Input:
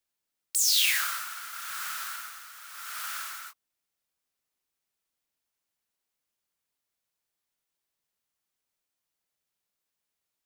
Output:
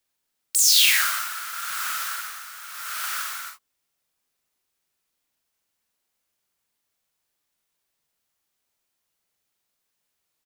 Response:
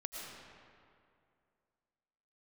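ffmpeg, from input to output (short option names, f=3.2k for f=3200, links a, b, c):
-af "aecho=1:1:42|55:0.531|0.251,volume=5.5dB"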